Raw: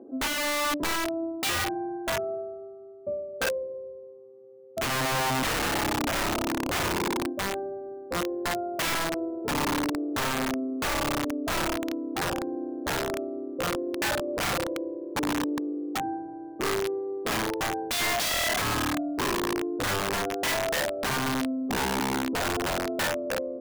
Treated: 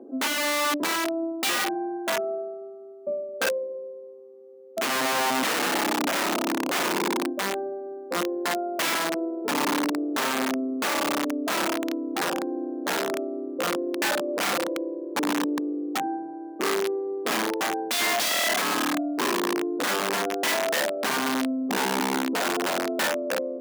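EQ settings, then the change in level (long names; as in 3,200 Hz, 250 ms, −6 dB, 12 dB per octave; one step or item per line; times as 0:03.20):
Butterworth high-pass 190 Hz 36 dB per octave
+2.5 dB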